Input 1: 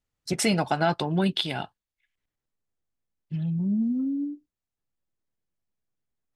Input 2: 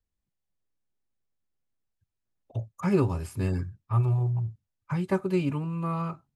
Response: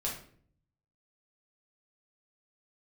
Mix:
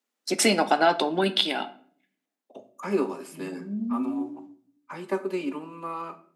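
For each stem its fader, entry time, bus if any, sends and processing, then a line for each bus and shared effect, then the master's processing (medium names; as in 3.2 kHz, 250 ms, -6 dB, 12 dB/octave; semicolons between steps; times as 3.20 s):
+2.5 dB, 0.00 s, send -11.5 dB, auto duck -10 dB, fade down 1.05 s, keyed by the second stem
-2.5 dB, 0.00 s, send -8.5 dB, none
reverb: on, RT60 0.55 s, pre-delay 5 ms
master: steep high-pass 220 Hz 48 dB/octave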